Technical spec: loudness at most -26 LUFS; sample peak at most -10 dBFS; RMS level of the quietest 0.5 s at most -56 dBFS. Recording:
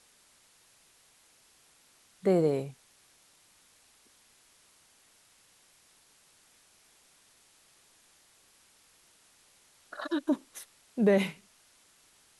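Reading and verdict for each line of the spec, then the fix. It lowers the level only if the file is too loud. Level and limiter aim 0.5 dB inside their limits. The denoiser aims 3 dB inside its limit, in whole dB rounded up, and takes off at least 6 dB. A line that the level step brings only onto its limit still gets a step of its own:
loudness -29.5 LUFS: OK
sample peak -13.0 dBFS: OK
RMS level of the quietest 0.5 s -63 dBFS: OK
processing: none

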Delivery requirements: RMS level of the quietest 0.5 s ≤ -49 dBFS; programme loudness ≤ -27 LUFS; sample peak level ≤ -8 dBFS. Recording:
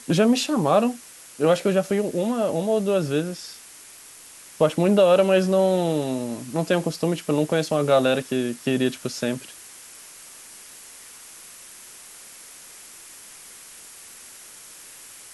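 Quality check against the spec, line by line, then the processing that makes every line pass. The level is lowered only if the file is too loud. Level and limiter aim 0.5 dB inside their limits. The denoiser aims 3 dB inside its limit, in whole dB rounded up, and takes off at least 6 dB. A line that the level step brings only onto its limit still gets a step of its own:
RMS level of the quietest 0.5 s -45 dBFS: fail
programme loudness -22.0 LUFS: fail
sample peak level -6.5 dBFS: fail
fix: gain -5.5 dB

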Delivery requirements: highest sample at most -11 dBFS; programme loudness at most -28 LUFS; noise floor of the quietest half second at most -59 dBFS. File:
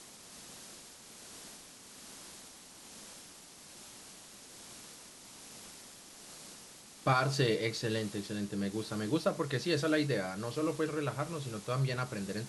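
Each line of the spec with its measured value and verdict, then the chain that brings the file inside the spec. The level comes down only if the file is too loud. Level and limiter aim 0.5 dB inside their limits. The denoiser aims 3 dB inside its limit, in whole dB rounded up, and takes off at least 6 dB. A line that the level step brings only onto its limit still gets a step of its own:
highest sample -15.0 dBFS: OK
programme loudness -33.5 LUFS: OK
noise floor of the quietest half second -53 dBFS: fail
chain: denoiser 9 dB, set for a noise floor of -53 dBFS

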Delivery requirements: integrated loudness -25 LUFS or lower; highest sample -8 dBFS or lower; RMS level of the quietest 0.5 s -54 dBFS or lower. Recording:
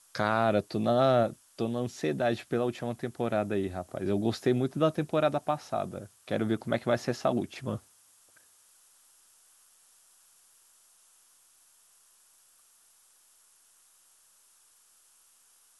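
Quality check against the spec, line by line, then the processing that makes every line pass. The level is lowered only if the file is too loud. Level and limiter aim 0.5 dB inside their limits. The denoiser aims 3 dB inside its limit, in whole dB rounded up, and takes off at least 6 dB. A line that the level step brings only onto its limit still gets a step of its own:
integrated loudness -30.0 LUFS: OK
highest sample -11.5 dBFS: OK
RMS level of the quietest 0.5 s -63 dBFS: OK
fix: none

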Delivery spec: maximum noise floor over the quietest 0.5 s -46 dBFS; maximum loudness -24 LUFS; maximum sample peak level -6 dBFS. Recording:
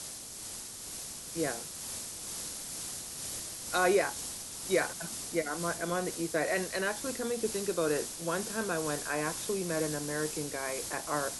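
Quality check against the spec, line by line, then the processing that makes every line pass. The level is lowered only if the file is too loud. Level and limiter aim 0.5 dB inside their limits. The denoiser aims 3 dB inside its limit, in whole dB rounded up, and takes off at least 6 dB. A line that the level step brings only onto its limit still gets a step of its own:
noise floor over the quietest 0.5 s -43 dBFS: fail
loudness -33.5 LUFS: OK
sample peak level -15.5 dBFS: OK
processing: denoiser 6 dB, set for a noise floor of -43 dBFS

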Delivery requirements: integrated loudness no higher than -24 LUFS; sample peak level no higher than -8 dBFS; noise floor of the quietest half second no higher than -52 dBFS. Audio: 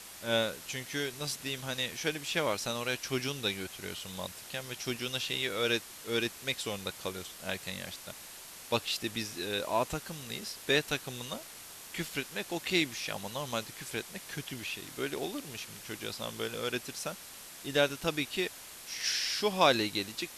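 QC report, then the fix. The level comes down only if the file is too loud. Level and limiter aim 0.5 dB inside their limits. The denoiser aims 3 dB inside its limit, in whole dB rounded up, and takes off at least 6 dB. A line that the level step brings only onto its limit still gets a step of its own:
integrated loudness -33.5 LUFS: OK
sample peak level -9.0 dBFS: OK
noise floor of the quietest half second -48 dBFS: fail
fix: denoiser 7 dB, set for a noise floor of -48 dBFS

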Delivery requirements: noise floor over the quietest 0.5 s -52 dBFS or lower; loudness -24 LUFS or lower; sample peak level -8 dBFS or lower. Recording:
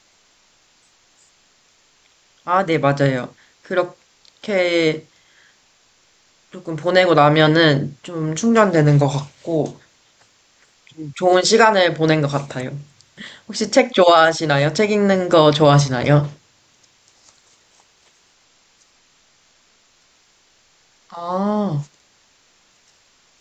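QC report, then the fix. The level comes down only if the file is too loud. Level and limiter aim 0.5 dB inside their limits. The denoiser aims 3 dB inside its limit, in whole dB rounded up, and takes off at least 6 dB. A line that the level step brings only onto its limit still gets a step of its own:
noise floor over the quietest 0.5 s -57 dBFS: OK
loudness -16.5 LUFS: fail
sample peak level -1.5 dBFS: fail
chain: gain -8 dB

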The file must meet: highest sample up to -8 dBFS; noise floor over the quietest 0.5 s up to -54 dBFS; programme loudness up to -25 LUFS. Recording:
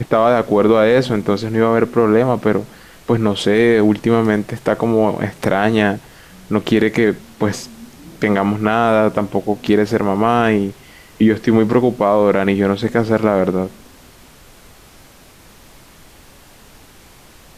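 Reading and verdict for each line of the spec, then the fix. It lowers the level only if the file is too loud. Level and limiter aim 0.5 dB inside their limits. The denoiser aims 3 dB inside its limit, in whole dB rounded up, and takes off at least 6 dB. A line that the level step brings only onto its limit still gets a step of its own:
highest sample -2.5 dBFS: fail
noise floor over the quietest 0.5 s -44 dBFS: fail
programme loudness -16.0 LUFS: fail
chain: denoiser 6 dB, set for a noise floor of -44 dBFS; gain -9.5 dB

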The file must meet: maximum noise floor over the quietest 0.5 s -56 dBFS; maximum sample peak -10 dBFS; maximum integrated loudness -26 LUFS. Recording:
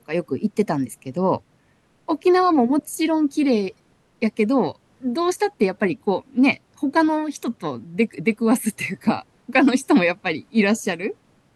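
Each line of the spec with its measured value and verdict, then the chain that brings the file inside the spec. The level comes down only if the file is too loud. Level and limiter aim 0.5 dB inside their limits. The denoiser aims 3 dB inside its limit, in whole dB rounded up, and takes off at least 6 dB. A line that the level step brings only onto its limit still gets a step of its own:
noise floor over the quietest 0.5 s -60 dBFS: OK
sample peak -4.0 dBFS: fail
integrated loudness -21.5 LUFS: fail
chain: gain -5 dB; limiter -10.5 dBFS

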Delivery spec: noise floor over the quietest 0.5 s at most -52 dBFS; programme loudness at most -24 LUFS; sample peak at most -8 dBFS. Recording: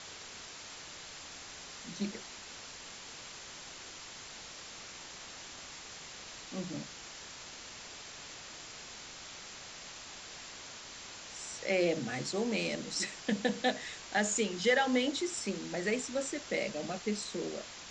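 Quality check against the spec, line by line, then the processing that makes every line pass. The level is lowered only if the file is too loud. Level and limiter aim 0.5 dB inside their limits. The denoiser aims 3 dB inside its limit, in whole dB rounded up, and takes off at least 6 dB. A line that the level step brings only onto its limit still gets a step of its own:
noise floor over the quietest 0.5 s -48 dBFS: fail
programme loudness -37.0 LUFS: OK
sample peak -15.5 dBFS: OK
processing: denoiser 7 dB, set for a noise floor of -48 dBFS

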